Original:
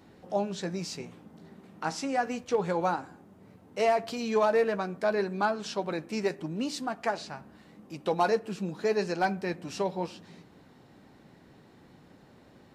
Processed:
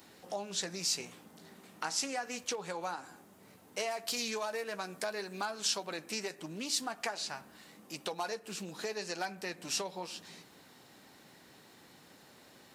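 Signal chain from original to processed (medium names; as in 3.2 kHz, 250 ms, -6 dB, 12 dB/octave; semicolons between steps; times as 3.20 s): treble shelf 5.7 kHz +5.5 dB, from 3.91 s +11.5 dB, from 5.86 s +5 dB; compression 6:1, threshold -33 dBFS, peak gain reduction 12 dB; tilt EQ +3 dB/octave; loudspeaker Doppler distortion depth 0.11 ms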